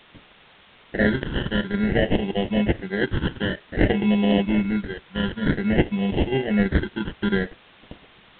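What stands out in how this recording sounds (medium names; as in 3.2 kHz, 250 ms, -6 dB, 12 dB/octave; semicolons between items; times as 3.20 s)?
aliases and images of a low sample rate 1.2 kHz, jitter 0%; phasing stages 8, 0.53 Hz, lowest notch 670–1400 Hz; a quantiser's noise floor 8-bit, dither triangular; G.726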